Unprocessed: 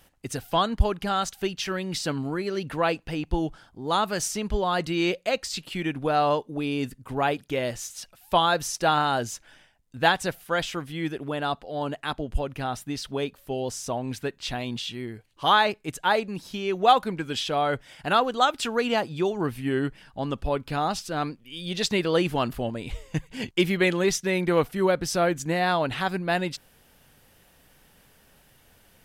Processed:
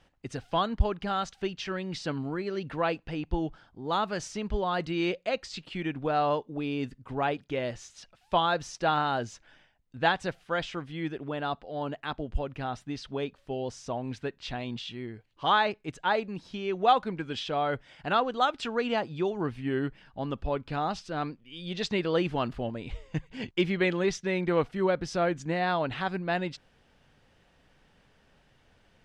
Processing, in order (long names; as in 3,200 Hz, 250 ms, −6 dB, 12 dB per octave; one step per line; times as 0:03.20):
high-frequency loss of the air 120 metres
level −3.5 dB